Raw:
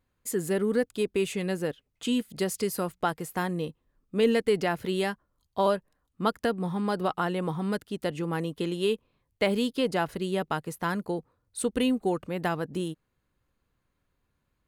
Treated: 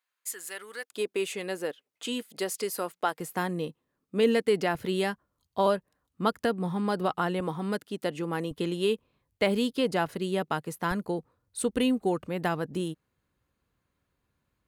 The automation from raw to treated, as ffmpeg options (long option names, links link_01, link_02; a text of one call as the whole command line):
ffmpeg -i in.wav -af "asetnsamples=nb_out_samples=441:pad=0,asendcmd='0.9 highpass f 370;3.2 highpass f 150;4.75 highpass f 66;7.4 highpass f 180;8.51 highpass f 45;10.06 highpass f 110;10.91 highpass f 49',highpass=1300" out.wav